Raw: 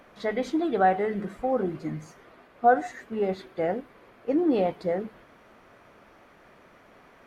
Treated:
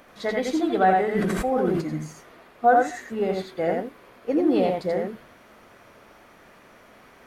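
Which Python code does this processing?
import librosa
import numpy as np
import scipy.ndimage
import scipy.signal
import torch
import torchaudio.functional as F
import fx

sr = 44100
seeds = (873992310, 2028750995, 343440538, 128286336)

y = fx.high_shelf(x, sr, hz=4500.0, db=8.5)
y = y + 10.0 ** (-3.0 / 20.0) * np.pad(y, (int(85 * sr / 1000.0), 0))[:len(y)]
y = fx.sustainer(y, sr, db_per_s=20.0, at=(1.14, 1.8), fade=0.02)
y = y * librosa.db_to_amplitude(1.0)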